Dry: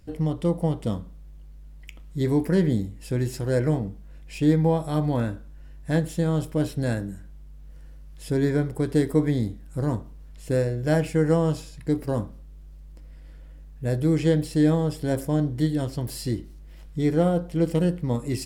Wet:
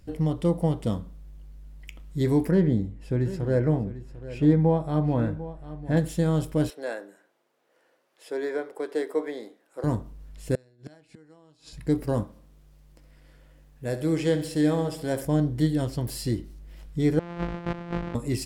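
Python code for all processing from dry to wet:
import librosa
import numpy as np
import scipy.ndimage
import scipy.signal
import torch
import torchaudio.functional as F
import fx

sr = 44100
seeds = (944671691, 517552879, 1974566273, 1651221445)

y = fx.chain(x, sr, fx.lowpass(hz=1500.0, slope=6),
    fx.echo_single(ms=747, db=-15.0), at=(2.51, 5.97))
y = fx.chain(y, sr, fx.highpass(hz=410.0, slope=24),
    fx.high_shelf(hz=3900.0, db=-11.0), at=(6.7, 9.84))
y = fx.chain(y, sr, fx.gate_flip(shuts_db=-21.0, range_db=-29),
    fx.cabinet(low_hz=140.0, low_slope=12, high_hz=9800.0, hz=(170.0, 520.0, 4100.0), db=(-8, -7, 10)), at=(10.55, 11.73))
y = fx.chain(y, sr, fx.low_shelf(hz=190.0, db=-11.0),
    fx.echo_feedback(ms=67, feedback_pct=57, wet_db=-13.0), at=(12.23, 15.25))
y = fx.chain(y, sr, fx.sample_sort(block=256),
    fx.lowpass(hz=2300.0, slope=12),
    fx.over_compress(threshold_db=-34.0, ratio=-1.0), at=(17.19, 18.15))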